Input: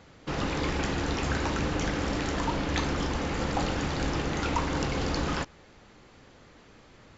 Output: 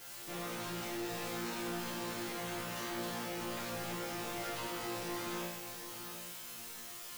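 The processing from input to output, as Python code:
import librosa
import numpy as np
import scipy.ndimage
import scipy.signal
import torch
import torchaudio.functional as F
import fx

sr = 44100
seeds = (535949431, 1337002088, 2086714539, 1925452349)

p1 = scipy.signal.sosfilt(scipy.signal.butter(4, 130.0, 'highpass', fs=sr, output='sos'), x)
p2 = fx.quant_dither(p1, sr, seeds[0], bits=6, dither='triangular')
p3 = p1 + (p2 * librosa.db_to_amplitude(1.5))
p4 = 10.0 ** (-22.0 / 20.0) * (np.abs((p3 / 10.0 ** (-22.0 / 20.0) + 3.0) % 4.0 - 2.0) - 1.0)
p5 = fx.resonator_bank(p4, sr, root=46, chord='fifth', decay_s=0.82)
p6 = np.clip(p5, -10.0 ** (-40.0 / 20.0), 10.0 ** (-40.0 / 20.0))
p7 = p6 + fx.echo_single(p6, sr, ms=729, db=-9.5, dry=0)
y = p7 * librosa.db_to_amplitude(4.5)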